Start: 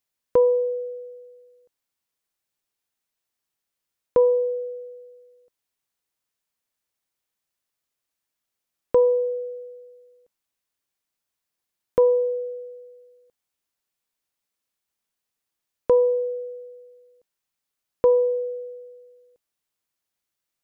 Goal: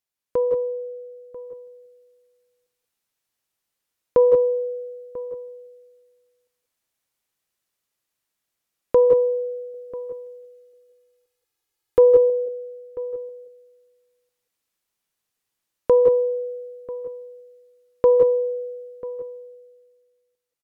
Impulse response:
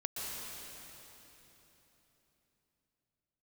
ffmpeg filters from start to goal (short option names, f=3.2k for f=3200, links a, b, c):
-filter_complex "[0:a]asettb=1/sr,asplit=3[a][b][c];[a]atrim=end=9.744[d];[b]atrim=start=9.74:end=12.3,asetpts=PTS-STARTPTS,afade=t=in:d=0.004:c=qsin,afade=t=out:st=2.556:d=0.004:c=qsin,aecho=1:1:2.4:0.85,atrim=end_sample=112896[e];[c]atrim=start=12.296[f];[d][e]acrossfade=d=0.004:c1=hsin:c2=qsin[g];[g][f]acrossfade=d=0.004:c1=qsin:c2=hsin,dynaudnorm=f=220:g=13:m=7dB,asplit=2[h][i];[i]adelay=991.3,volume=-17dB,highshelf=f=4k:g=-22.3[j];[h][j]amix=inputs=2:normalize=0[k];[1:a]atrim=start_sample=2205,atrim=end_sample=6174,asetrate=32193,aresample=44100[l];[k][l]afir=irnorm=-1:irlink=0,volume=-3dB"